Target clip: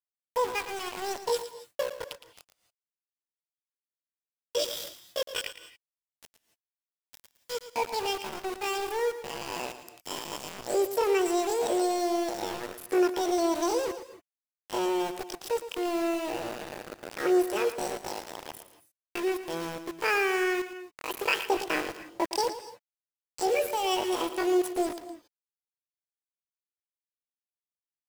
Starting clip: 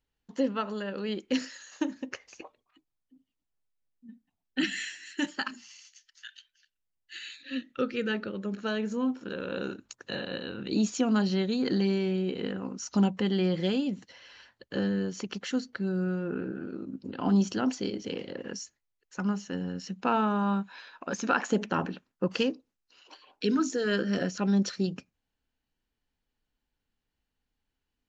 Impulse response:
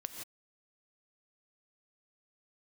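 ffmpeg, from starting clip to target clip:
-filter_complex "[0:a]asetrate=80880,aresample=44100,atempo=0.545254,aeval=exprs='val(0)*gte(abs(val(0)),0.0224)':channel_layout=same,asplit=2[link_01][link_02];[1:a]atrim=start_sample=2205,adelay=113[link_03];[link_02][link_03]afir=irnorm=-1:irlink=0,volume=-9dB[link_04];[link_01][link_04]amix=inputs=2:normalize=0"

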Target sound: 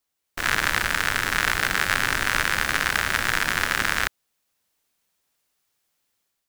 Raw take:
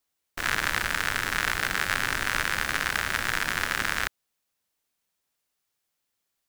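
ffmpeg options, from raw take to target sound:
ffmpeg -i in.wav -af "dynaudnorm=framelen=130:gausssize=5:maxgain=6dB" out.wav

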